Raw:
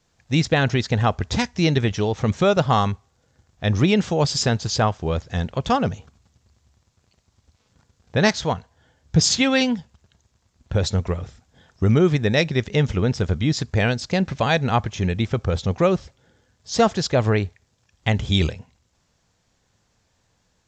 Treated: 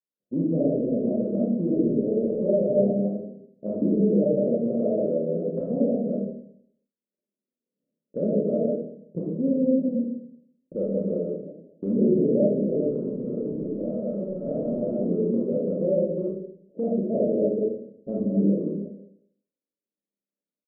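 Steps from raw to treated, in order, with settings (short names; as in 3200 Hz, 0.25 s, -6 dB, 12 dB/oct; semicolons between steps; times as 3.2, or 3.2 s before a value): reverse delay 0.153 s, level -3 dB; steep high-pass 200 Hz 36 dB/oct; expander -49 dBFS; steep low-pass 600 Hz 96 dB/oct; dynamic EQ 350 Hz, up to -5 dB, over -31 dBFS, Q 1.4; limiter -19.5 dBFS, peak gain reduction 9.5 dB; 12.85–15 negative-ratio compressor -33 dBFS, ratio -1; vibrato 11 Hz 17 cents; doubler 30 ms -5.5 dB; digital reverb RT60 0.66 s, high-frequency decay 0.4×, pre-delay 5 ms, DRR -4.5 dB; gain -1 dB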